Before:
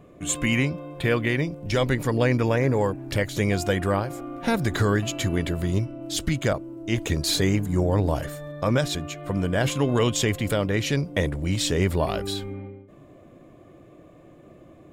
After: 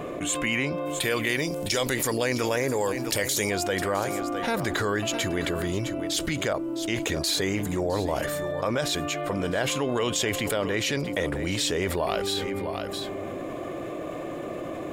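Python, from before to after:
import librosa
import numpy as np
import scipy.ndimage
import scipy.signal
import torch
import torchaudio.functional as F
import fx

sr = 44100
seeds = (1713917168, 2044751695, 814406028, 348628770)

y = fx.bass_treble(x, sr, bass_db=-12, treble_db=fx.steps((0.0, -3.0), (0.85, 14.0), (3.49, -1.0)))
y = y + 10.0 ** (-16.5 / 20.0) * np.pad(y, (int(659 * sr / 1000.0), 0))[:len(y)]
y = fx.env_flatten(y, sr, amount_pct=70)
y = F.gain(torch.from_numpy(y), -4.0).numpy()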